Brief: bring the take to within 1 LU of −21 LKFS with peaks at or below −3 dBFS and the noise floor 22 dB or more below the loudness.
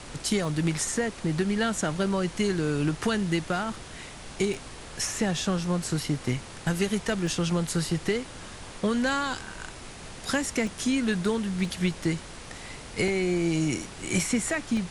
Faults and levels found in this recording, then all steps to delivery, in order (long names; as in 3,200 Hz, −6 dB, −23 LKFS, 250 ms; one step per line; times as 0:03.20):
number of dropouts 7; longest dropout 1.2 ms; background noise floor −43 dBFS; target noise floor −50 dBFS; integrated loudness −28.0 LKFS; sample peak −14.0 dBFS; target loudness −21.0 LKFS
→ repair the gap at 0:00.45/0:04.54/0:07.27/0:10.67/0:11.65/0:13.08/0:14.77, 1.2 ms
noise reduction from a noise print 7 dB
level +7 dB